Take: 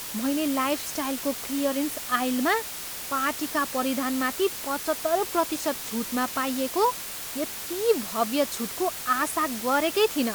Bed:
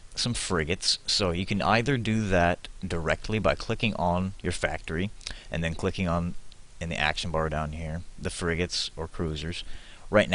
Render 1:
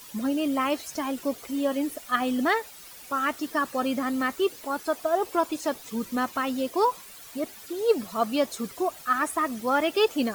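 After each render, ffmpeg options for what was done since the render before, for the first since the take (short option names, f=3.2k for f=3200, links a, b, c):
-af "afftdn=nr=13:nf=-36"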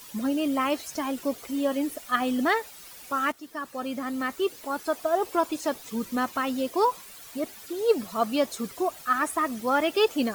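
-filter_complex "[0:a]asplit=2[a][b];[a]atrim=end=3.32,asetpts=PTS-STARTPTS,afade=t=out:st=3.316:d=0.004:c=hsin:silence=0.211349[c];[b]atrim=start=3.32,asetpts=PTS-STARTPTS,afade=t=in:d=2.01:c=qsin:silence=0.211349[d];[c][d]concat=n=2:v=0:a=1"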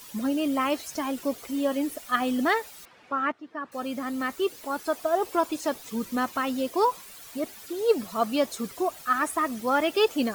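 -filter_complex "[0:a]asettb=1/sr,asplit=3[a][b][c];[a]atrim=end=2.854[d];[b]atrim=start=2.85:end=3.72,asetpts=PTS-STARTPTS,afade=t=in:d=0.004:c=qsin,afade=t=out:st=0.866:d=0.004:c=qsin,highpass=110,lowpass=2.2k[e];[c]atrim=start=3.716[f];[d][e]acrossfade=d=0.004:c1=hsin:c2=qsin[g];[g][f]acrossfade=d=0.004:c1=qsin:c2=hsin"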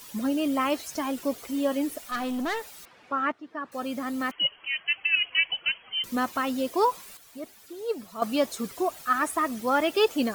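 -filter_complex "[0:a]asettb=1/sr,asplit=3[a][b][c];[a]atrim=end=2.084[d];[b]atrim=start=2.08:end=2.68,asetpts=PTS-STARTPTS,afade=t=in:d=0.004:c=qsin,afade=t=out:st=0.596:d=0.004:c=qsin,aeval=exprs='(tanh(20*val(0)+0.2)-tanh(0.2))/20':c=same[e];[c]atrim=start=2.676[f];[d][e]acrossfade=d=0.004:c1=hsin:c2=qsin[g];[g][f]acrossfade=d=0.004:c1=qsin:c2=hsin,asettb=1/sr,asplit=3[h][i][j];[h]atrim=end=4.314[k];[i]atrim=start=4.31:end=6.04,asetpts=PTS-STARTPTS,afade=t=in:d=0.004:c=qsin,afade=t=out:st=1.726:d=0.004:c=qsin,lowpass=f=2.8k:t=q:w=0.5098,lowpass=f=2.8k:t=q:w=0.6013,lowpass=f=2.8k:t=q:w=0.9,lowpass=f=2.8k:t=q:w=2.563,afreqshift=-3300[l];[j]atrim=start=6.036[m];[k][l]acrossfade=d=0.004:c1=hsin:c2=qsin[n];[n][m]acrossfade=d=0.004:c1=qsin:c2=hsin,asplit=3[o][p][q];[o]atrim=end=7.172[r];[p]atrim=start=7.168:end=8.222,asetpts=PTS-STARTPTS,volume=-8dB[s];[q]atrim=start=8.218[t];[r][s]acrossfade=d=0.004:c1=hsin:c2=hsin[u];[u][t]acrossfade=d=0.004:c1=hsin:c2=hsin"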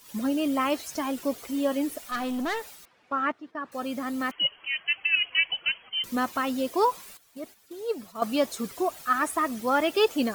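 -af "agate=range=-8dB:threshold=-45dB:ratio=16:detection=peak"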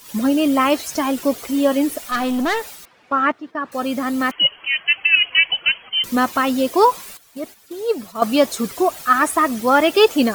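-af "volume=9.5dB,alimiter=limit=-2dB:level=0:latency=1"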